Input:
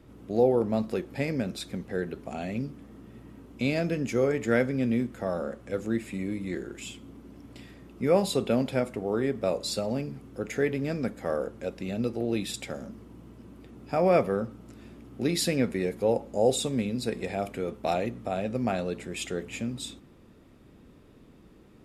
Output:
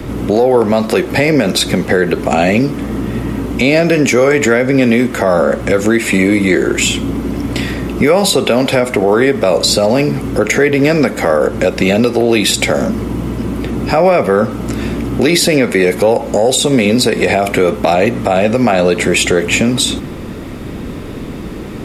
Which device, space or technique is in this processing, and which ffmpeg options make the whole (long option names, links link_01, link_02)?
mastering chain: -filter_complex "[0:a]equalizer=frequency=2100:width_type=o:width=0.22:gain=3.5,acrossover=split=330|800[link_01][link_02][link_03];[link_01]acompressor=threshold=-43dB:ratio=4[link_04];[link_02]acompressor=threshold=-35dB:ratio=4[link_05];[link_03]acompressor=threshold=-38dB:ratio=4[link_06];[link_04][link_05][link_06]amix=inputs=3:normalize=0,acompressor=threshold=-40dB:ratio=1.5,asoftclip=type=tanh:threshold=-23.5dB,alimiter=level_in=30.5dB:limit=-1dB:release=50:level=0:latency=1,volume=-1dB"